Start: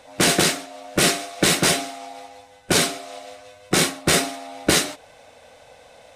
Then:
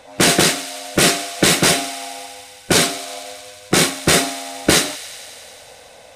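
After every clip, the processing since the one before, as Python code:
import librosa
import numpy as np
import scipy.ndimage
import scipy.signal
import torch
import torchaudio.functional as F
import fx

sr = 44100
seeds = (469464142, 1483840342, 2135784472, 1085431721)

y = fx.echo_wet_highpass(x, sr, ms=91, feedback_pct=82, hz=2000.0, wet_db=-16)
y = F.gain(torch.from_numpy(y), 4.0).numpy()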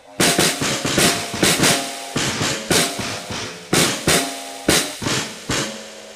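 y = fx.echo_pitch(x, sr, ms=362, semitones=-4, count=2, db_per_echo=-6.0)
y = F.gain(torch.from_numpy(y), -2.0).numpy()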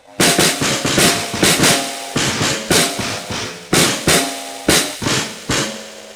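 y = fx.leveller(x, sr, passes=1)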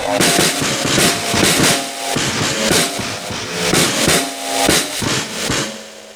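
y = fx.pre_swell(x, sr, db_per_s=50.0)
y = F.gain(torch.from_numpy(y), -1.0).numpy()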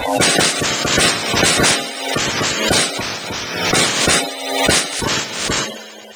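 y = fx.spec_quant(x, sr, step_db=30)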